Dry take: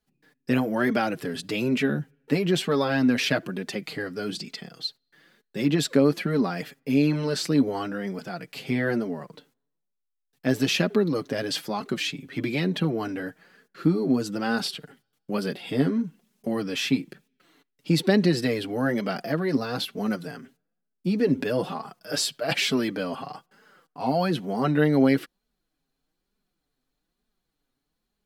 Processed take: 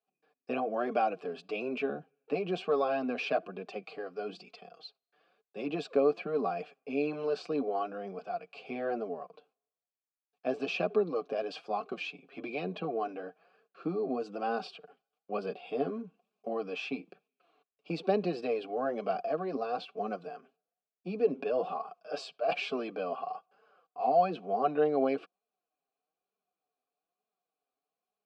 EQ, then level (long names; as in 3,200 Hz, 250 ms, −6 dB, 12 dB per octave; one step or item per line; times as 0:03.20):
dynamic equaliser 230 Hz, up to +5 dB, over −35 dBFS, Q 0.81
formant filter a
loudspeaker in its box 140–8,800 Hz, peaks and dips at 180 Hz +7 dB, 440 Hz +9 dB, 1,600 Hz +3 dB, 4,700 Hz +4 dB
+3.0 dB